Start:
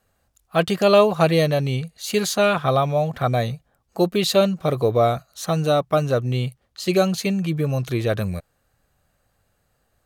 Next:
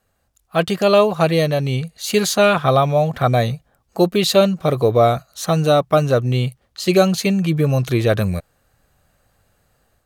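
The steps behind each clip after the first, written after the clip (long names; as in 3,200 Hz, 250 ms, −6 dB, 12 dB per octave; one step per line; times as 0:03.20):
automatic gain control gain up to 6 dB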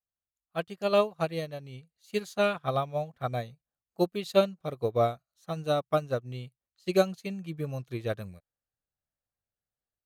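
expander for the loud parts 2.5 to 1, over −27 dBFS
level −7.5 dB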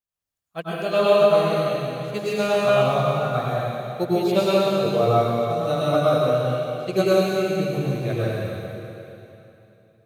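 dense smooth reverb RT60 3 s, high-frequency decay 0.95×, pre-delay 85 ms, DRR −8.5 dB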